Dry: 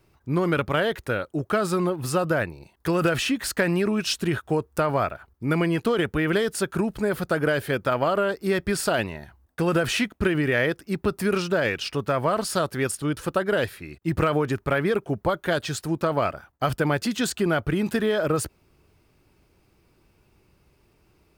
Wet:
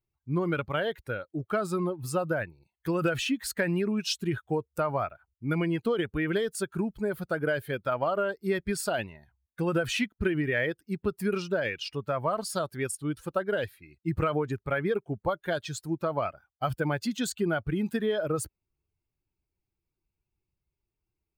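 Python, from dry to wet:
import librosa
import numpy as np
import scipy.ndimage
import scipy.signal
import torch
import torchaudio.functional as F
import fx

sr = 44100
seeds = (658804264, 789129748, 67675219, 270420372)

y = fx.bin_expand(x, sr, power=1.5)
y = F.gain(torch.from_numpy(y), -2.5).numpy()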